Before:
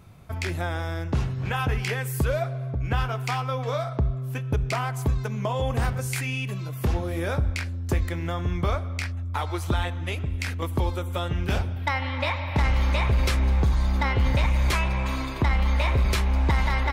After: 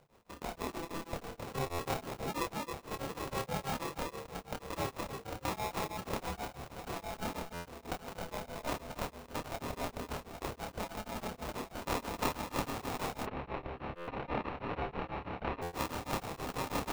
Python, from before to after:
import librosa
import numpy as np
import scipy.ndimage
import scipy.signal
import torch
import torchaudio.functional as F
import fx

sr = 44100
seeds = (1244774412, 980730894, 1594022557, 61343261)

y = scipy.signal.sosfilt(scipy.signal.butter(2, 180.0, 'highpass', fs=sr, output='sos'), x)
y = fx.low_shelf(y, sr, hz=250.0, db=-11.5)
y = fx.echo_alternate(y, sr, ms=265, hz=1800.0, feedback_pct=62, wet_db=-4)
y = fx.sample_hold(y, sr, seeds[0], rate_hz=1500.0, jitter_pct=0)
y = fx.lowpass(y, sr, hz=2900.0, slope=24, at=(13.22, 15.61), fade=0.02)
y = y * np.sin(2.0 * np.pi * 330.0 * np.arange(len(y)) / sr)
y = fx.doubler(y, sr, ms=28.0, db=-2.5)
y = fx.buffer_glitch(y, sr, at_s=(1.66, 7.53, 13.95, 15.62), block=512, repeats=10)
y = y * np.abs(np.cos(np.pi * 6.2 * np.arange(len(y)) / sr))
y = y * 10.0 ** (-3.5 / 20.0)